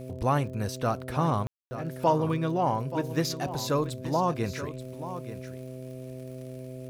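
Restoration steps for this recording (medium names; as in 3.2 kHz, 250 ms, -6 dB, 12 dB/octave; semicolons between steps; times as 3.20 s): de-click; de-hum 128.6 Hz, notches 5; room tone fill 1.47–1.71 s; inverse comb 880 ms -12 dB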